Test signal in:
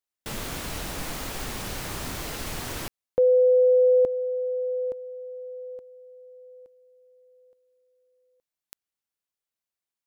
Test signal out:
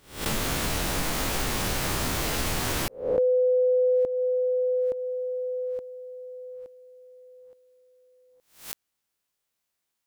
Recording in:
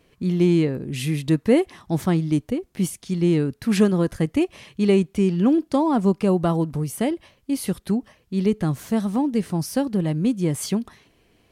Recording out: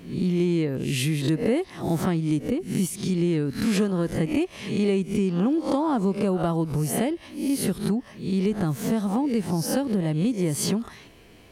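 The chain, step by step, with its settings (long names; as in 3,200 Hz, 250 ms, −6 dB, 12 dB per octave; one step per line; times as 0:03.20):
peak hold with a rise ahead of every peak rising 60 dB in 0.43 s
downward compressor 3 to 1, threshold −32 dBFS
level +7.5 dB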